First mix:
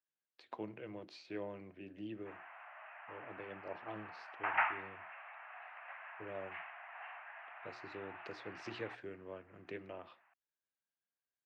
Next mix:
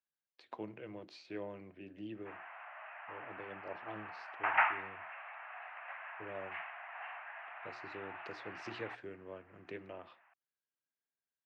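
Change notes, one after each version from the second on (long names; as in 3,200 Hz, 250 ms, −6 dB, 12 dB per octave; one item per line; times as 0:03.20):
background +3.5 dB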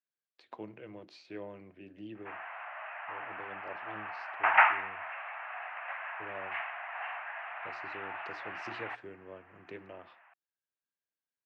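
background +7.0 dB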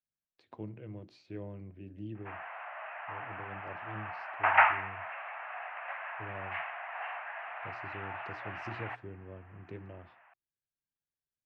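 speech −5.5 dB
master: remove meter weighting curve A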